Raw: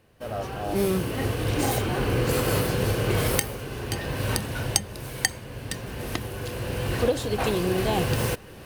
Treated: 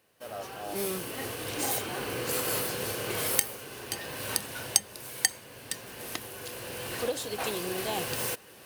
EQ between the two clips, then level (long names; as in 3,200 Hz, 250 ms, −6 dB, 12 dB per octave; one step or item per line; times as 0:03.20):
high-pass filter 440 Hz 6 dB per octave
high-shelf EQ 4,900 Hz +8.5 dB
−5.5 dB